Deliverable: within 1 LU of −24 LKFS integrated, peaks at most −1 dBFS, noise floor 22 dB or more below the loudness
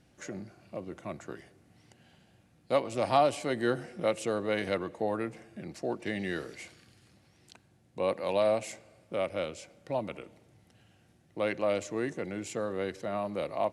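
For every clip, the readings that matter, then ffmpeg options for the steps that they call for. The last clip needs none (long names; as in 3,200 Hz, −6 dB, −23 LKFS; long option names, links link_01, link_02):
integrated loudness −32.5 LKFS; sample peak −12.5 dBFS; target loudness −24.0 LKFS
→ -af "volume=8.5dB"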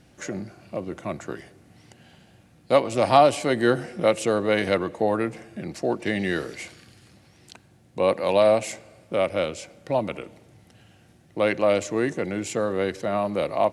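integrated loudness −24.0 LKFS; sample peak −4.0 dBFS; background noise floor −56 dBFS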